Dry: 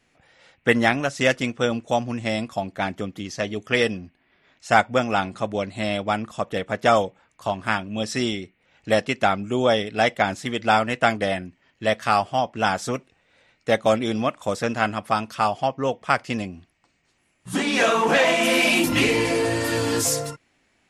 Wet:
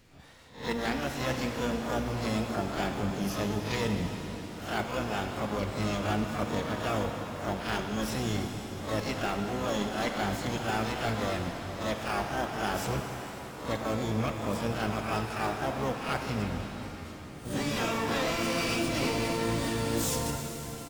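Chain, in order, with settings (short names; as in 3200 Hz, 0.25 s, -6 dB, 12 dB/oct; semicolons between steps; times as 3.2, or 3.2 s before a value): spectral swells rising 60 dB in 0.31 s; downsampling 22050 Hz; high shelf 4900 Hz +4 dB; harmoniser -12 st -8 dB, +12 st -4 dB; AGC; in parallel at -10.5 dB: decimation with a swept rate 16×, swing 60% 2.2 Hz; on the sum: low shelf 200 Hz +8.5 dB; reverse; compressor 4:1, threshold -30 dBFS, peak gain reduction 19.5 dB; reverse; shimmer reverb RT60 4 s, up +7 st, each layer -8 dB, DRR 4 dB; gain -2.5 dB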